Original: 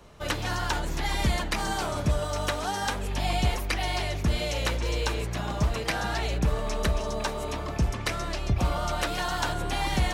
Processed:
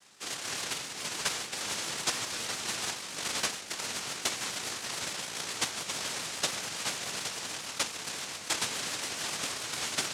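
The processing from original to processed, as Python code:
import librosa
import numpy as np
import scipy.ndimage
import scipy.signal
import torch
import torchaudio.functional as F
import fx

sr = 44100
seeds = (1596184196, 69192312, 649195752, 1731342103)

y = fx.spec_topn(x, sr, count=32)
y = fx.noise_vocoder(y, sr, seeds[0], bands=1)
y = fx.vibrato(y, sr, rate_hz=7.1, depth_cents=78.0)
y = y * librosa.db_to_amplitude(-4.0)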